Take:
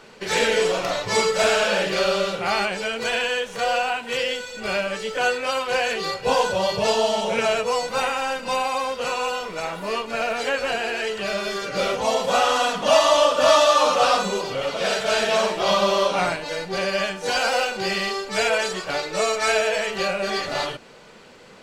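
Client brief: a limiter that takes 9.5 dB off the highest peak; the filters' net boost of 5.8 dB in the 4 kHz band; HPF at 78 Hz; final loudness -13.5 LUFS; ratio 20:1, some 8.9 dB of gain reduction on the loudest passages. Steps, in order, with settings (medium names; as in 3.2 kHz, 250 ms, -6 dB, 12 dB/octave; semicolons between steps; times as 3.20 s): high-pass 78 Hz; peaking EQ 4 kHz +7.5 dB; compression 20:1, threshold -19 dBFS; trim +13.5 dB; peak limiter -5 dBFS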